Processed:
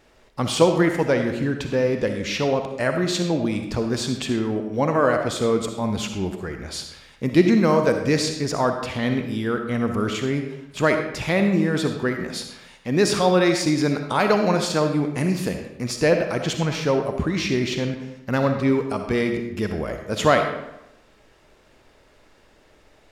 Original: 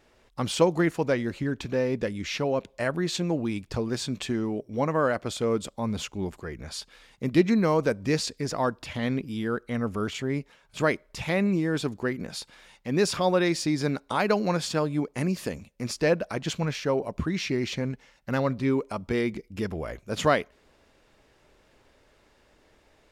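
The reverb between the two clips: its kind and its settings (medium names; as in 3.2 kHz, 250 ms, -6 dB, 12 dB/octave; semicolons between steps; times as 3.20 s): algorithmic reverb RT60 0.89 s, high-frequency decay 0.75×, pre-delay 20 ms, DRR 5 dB; trim +4.5 dB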